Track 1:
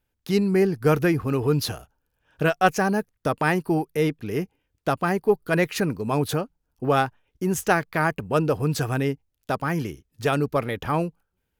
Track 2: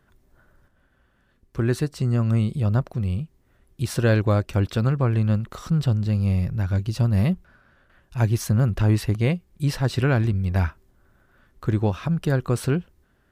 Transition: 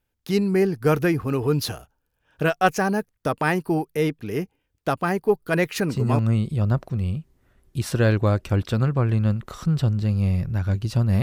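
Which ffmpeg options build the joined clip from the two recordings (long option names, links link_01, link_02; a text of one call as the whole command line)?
ffmpeg -i cue0.wav -i cue1.wav -filter_complex "[0:a]apad=whole_dur=11.22,atrim=end=11.22,atrim=end=6.19,asetpts=PTS-STARTPTS[link_01];[1:a]atrim=start=1.93:end=7.26,asetpts=PTS-STARTPTS[link_02];[link_01][link_02]acrossfade=duration=0.3:curve1=log:curve2=log" out.wav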